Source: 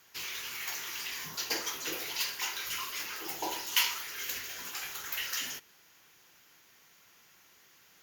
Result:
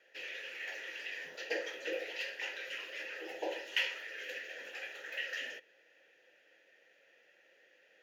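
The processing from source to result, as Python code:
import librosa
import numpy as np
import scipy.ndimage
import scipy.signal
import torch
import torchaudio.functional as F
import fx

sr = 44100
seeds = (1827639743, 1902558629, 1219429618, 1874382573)

y = fx.vowel_filter(x, sr, vowel='e')
y = fx.peak_eq(y, sr, hz=880.0, db=7.5, octaves=2.2)
y = fx.small_body(y, sr, hz=(310.0, 3300.0), ring_ms=45, db=6)
y = F.gain(torch.from_numpy(y), 6.5).numpy()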